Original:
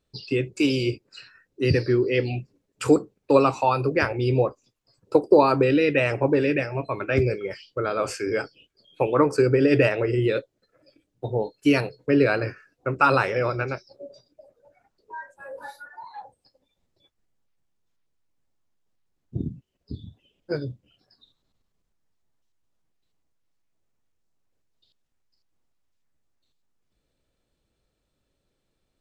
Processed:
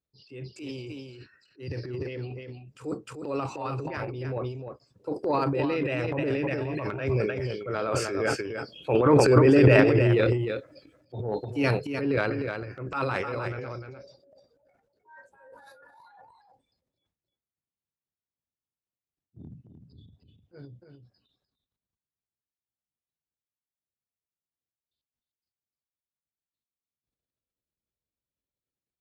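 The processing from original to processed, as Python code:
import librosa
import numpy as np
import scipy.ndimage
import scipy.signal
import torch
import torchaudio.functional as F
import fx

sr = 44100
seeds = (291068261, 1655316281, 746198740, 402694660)

p1 = fx.doppler_pass(x, sr, speed_mps=5, closest_m=5.9, pass_at_s=9.19)
p2 = fx.high_shelf(p1, sr, hz=6100.0, db=-4.5)
p3 = p2 + fx.echo_single(p2, sr, ms=303, db=-7.5, dry=0)
p4 = fx.transient(p3, sr, attack_db=-7, sustain_db=11)
p5 = scipy.signal.sosfilt(scipy.signal.butter(2, 53.0, 'highpass', fs=sr, output='sos'), p4)
y = fx.low_shelf(p5, sr, hz=190.0, db=4.5)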